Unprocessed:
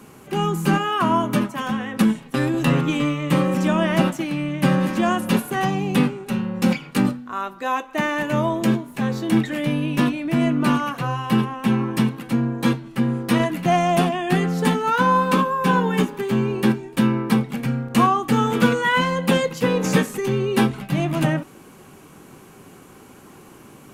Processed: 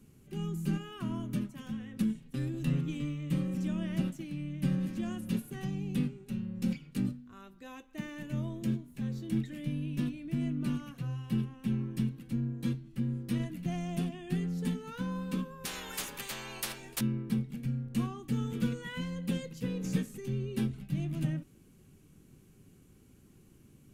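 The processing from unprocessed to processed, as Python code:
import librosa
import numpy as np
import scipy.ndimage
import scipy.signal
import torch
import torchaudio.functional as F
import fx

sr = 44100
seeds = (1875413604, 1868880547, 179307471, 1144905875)

y = fx.tone_stack(x, sr, knobs='10-0-1')
y = fx.spectral_comp(y, sr, ratio=10.0, at=(15.65, 17.01))
y = y * 10.0 ** (4.0 / 20.0)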